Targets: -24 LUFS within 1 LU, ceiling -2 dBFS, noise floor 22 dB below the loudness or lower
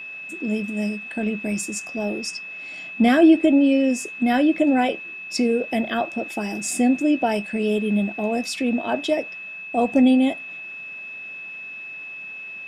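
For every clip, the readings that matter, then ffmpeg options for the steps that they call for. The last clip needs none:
steady tone 2600 Hz; tone level -33 dBFS; loudness -21.5 LUFS; peak -5.5 dBFS; loudness target -24.0 LUFS
-> -af "bandreject=f=2.6k:w=30"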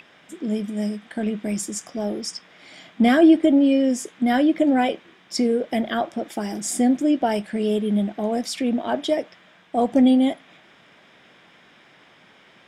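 steady tone none; loudness -21.5 LUFS; peak -5.5 dBFS; loudness target -24.0 LUFS
-> -af "volume=-2.5dB"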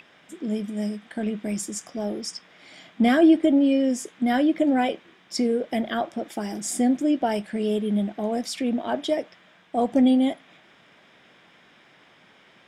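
loudness -24.0 LUFS; peak -8.0 dBFS; noise floor -56 dBFS

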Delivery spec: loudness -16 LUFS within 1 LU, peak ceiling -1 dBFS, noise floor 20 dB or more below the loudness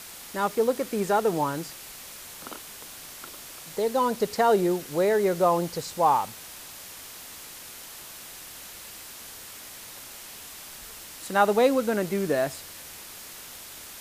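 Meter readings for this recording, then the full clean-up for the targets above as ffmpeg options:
noise floor -43 dBFS; noise floor target -45 dBFS; loudness -25.0 LUFS; peak -8.0 dBFS; loudness target -16.0 LUFS
-> -af "afftdn=nr=6:nf=-43"
-af "volume=9dB,alimiter=limit=-1dB:level=0:latency=1"

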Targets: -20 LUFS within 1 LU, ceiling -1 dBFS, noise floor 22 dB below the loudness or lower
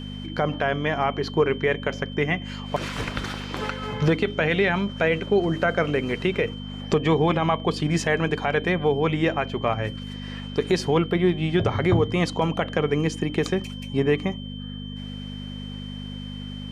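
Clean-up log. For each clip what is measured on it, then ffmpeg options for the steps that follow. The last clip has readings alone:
hum 50 Hz; harmonics up to 250 Hz; hum level -32 dBFS; steady tone 3100 Hz; tone level -41 dBFS; loudness -24.0 LUFS; peak -9.5 dBFS; loudness target -20.0 LUFS
-> -af "bandreject=f=50:t=h:w=4,bandreject=f=100:t=h:w=4,bandreject=f=150:t=h:w=4,bandreject=f=200:t=h:w=4,bandreject=f=250:t=h:w=4"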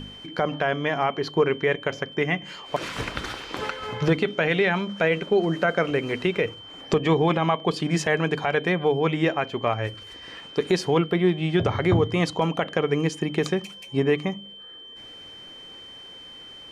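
hum none; steady tone 3100 Hz; tone level -41 dBFS
-> -af "bandreject=f=3.1k:w=30"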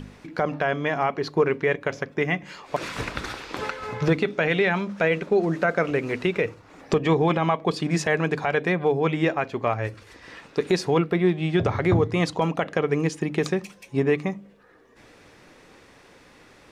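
steady tone none; loudness -24.5 LUFS; peak -9.5 dBFS; loudness target -20.0 LUFS
-> -af "volume=4.5dB"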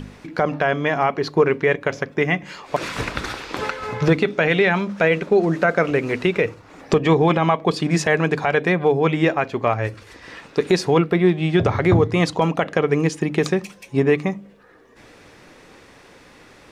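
loudness -20.0 LUFS; peak -5.0 dBFS; noise floor -48 dBFS

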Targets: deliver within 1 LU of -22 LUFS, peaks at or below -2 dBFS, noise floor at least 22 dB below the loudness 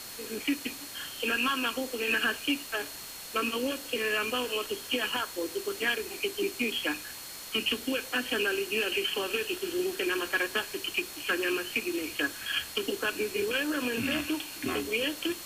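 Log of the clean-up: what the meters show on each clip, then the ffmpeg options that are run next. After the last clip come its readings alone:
steady tone 4300 Hz; tone level -48 dBFS; noise floor -43 dBFS; noise floor target -53 dBFS; loudness -30.5 LUFS; peak -18.0 dBFS; loudness target -22.0 LUFS
-> -af "bandreject=f=4.3k:w=30"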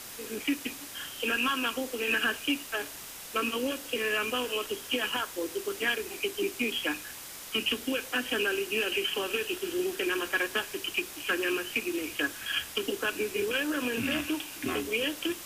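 steady tone none; noise floor -44 dBFS; noise floor target -53 dBFS
-> -af "afftdn=nr=9:nf=-44"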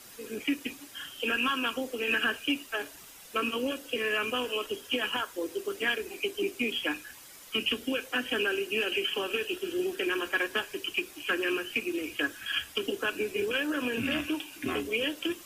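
noise floor -50 dBFS; noise floor target -53 dBFS
-> -af "afftdn=nr=6:nf=-50"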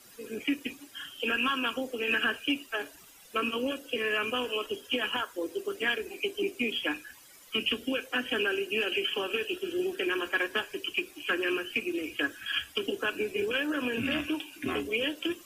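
noise floor -54 dBFS; loudness -30.5 LUFS; peak -18.5 dBFS; loudness target -22.0 LUFS
-> -af "volume=8.5dB"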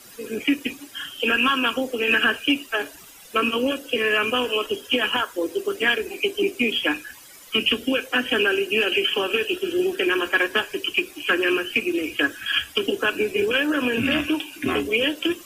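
loudness -22.0 LUFS; peak -10.0 dBFS; noise floor -46 dBFS

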